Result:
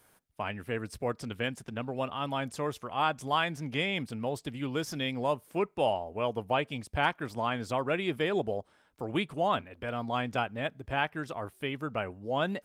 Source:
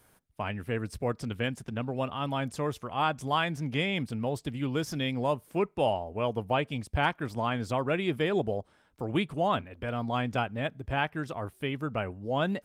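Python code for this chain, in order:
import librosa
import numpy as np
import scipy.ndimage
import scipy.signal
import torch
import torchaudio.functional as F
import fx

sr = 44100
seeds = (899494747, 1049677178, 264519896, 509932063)

y = fx.low_shelf(x, sr, hz=220.0, db=-7.0)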